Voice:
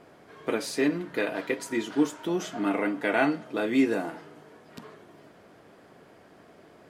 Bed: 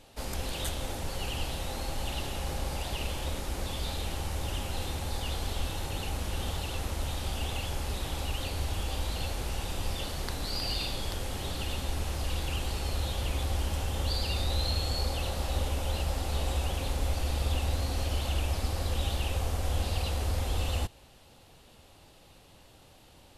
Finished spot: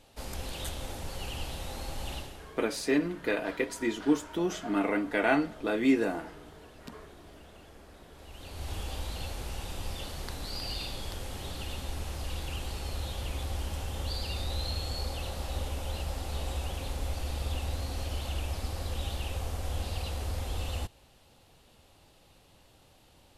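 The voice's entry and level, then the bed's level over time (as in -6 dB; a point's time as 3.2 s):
2.10 s, -1.5 dB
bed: 2.15 s -3.5 dB
2.58 s -22 dB
8.1 s -22 dB
8.71 s -4 dB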